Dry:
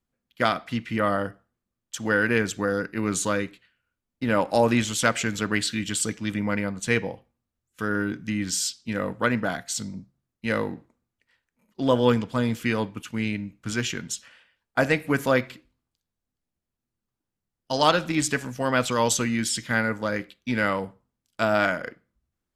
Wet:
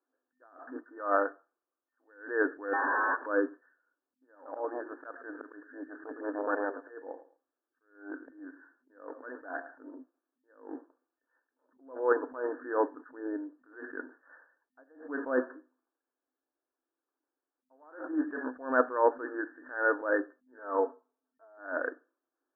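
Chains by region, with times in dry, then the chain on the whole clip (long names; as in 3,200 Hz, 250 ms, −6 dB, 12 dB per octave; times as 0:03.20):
0:00.76–0:02.08: low-shelf EQ 310 Hz −10.5 dB + notch filter 1,700 Hz, Q 9.4
0:02.73–0:03.26: sign of each sample alone + ring modulation 1,300 Hz
0:04.35–0:09.75: volume swells 514 ms + repeating echo 109 ms, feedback 23%, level −17 dB + saturating transformer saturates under 1,200 Hz
0:20.58–0:21.58: low-pass filter 1,400 Hz 24 dB per octave + comb filter 4.5 ms, depth 68%
whole clip: brick-wall band-pass 250–1,800 Hz; level that may rise only so fast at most 130 dB per second; level +3 dB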